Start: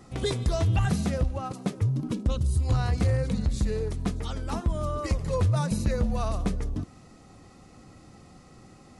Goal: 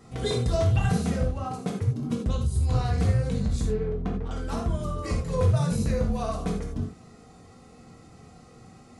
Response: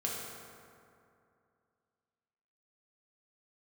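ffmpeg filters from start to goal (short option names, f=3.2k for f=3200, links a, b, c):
-filter_complex "[0:a]asettb=1/sr,asplit=3[a][b][c];[a]atrim=end=3.664[d];[b]atrim=start=3.66:end=4.31,asetpts=PTS-STARTPTS,afade=t=in:d=0.004:c=qsin,afade=t=out:st=0.646:d=0.004:c=qsin,adynamicsmooth=sensitivity=3.5:basefreq=540[e];[c]atrim=start=4.306[f];[d][e]acrossfade=d=0.004:c1=hsin:c2=qsin[g];[g][f]acrossfade=d=0.004:c1=qsin:c2=hsin[h];[1:a]atrim=start_sample=2205,atrim=end_sample=4410[i];[h][i]afir=irnorm=-1:irlink=0,volume=-1.5dB"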